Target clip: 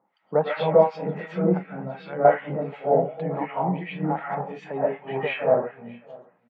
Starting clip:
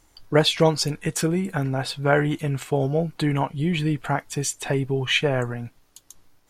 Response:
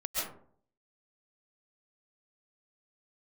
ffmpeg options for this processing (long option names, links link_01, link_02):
-filter_complex "[0:a]highpass=frequency=180:width=0.5412,highpass=frequency=180:width=1.3066,equalizer=frequency=190:width_type=q:width=4:gain=8,equalizer=frequency=310:width_type=q:width=4:gain=-8,equalizer=frequency=520:width_type=q:width=4:gain=6,equalizer=frequency=830:width_type=q:width=4:gain=8,equalizer=frequency=1600:width_type=q:width=4:gain=-4,lowpass=frequency=2200:width=0.5412,lowpass=frequency=2200:width=1.3066[link_01];[1:a]atrim=start_sample=2205[link_02];[link_01][link_02]afir=irnorm=-1:irlink=0,acrossover=split=1400[link_03][link_04];[link_03]aeval=exprs='val(0)*(1-1/2+1/2*cos(2*PI*2.7*n/s))':channel_layout=same[link_05];[link_04]aeval=exprs='val(0)*(1-1/2-1/2*cos(2*PI*2.7*n/s))':channel_layout=same[link_06];[link_05][link_06]amix=inputs=2:normalize=0,asettb=1/sr,asplit=3[link_07][link_08][link_09];[link_07]atrim=end=1.664[link_10];[link_08]atrim=start=1.66:end=2.25,asetpts=PTS-STARTPTS,afade=type=in:duration=0.004:curve=qsin,afade=type=out:start_time=0.586:duration=0.004:curve=qsin,equalizer=frequency=780:width_type=o:width=2:gain=-11.5[link_11];[link_09]atrim=start=2.246[link_12];[link_10][link_11]acrossfade=duration=0.004:curve1=hsin:curve2=qsin[link_13];[link_13][link_12]acrossfade=duration=0.004:curve1=qsin:curve2=hsin,aecho=1:1:618:0.0668,volume=-2dB"